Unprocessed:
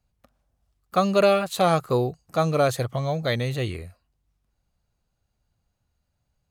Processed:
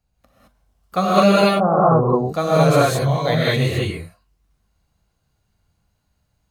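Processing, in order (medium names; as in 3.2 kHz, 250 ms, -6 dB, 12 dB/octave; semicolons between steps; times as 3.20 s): 1.37–2.10 s: steep low-pass 1.3 kHz 48 dB/octave; gated-style reverb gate 240 ms rising, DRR -7.5 dB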